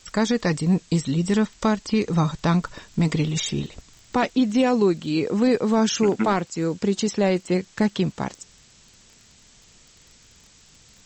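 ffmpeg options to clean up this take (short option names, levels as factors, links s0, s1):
-af "adeclick=t=4,afftdn=nr=14:nf=-53"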